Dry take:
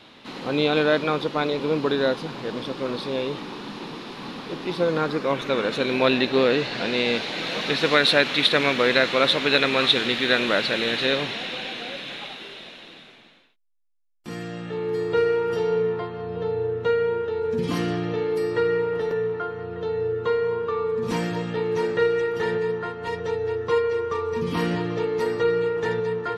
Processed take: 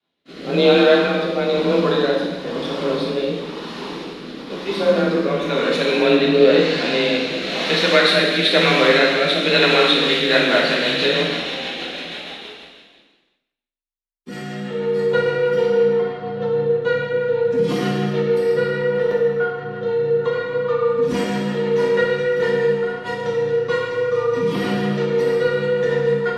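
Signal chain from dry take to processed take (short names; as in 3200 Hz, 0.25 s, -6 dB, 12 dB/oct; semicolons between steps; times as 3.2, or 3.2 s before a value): rotary speaker horn 1 Hz, later 6.3 Hz, at 9.64; expander -36 dBFS; frequency shift +27 Hz; non-linear reverb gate 0.43 s falling, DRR -3 dB; gain +2.5 dB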